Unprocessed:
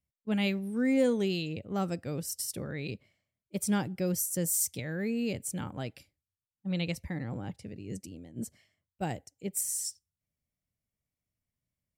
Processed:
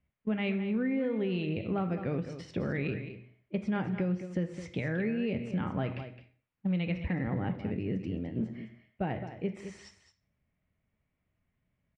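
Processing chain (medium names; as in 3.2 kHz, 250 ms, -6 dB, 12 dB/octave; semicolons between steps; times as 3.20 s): on a send at -7 dB: reverberation RT60 0.45 s, pre-delay 3 ms; on the sum: short-mantissa float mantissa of 4-bit; low-pass 2.7 kHz 24 dB/octave; compression 10:1, threshold -38 dBFS, peak gain reduction 17 dB; delay 213 ms -11.5 dB; in parallel at 0 dB: peak limiter -35 dBFS, peak gain reduction 5.5 dB; on the sum: trim +4.5 dB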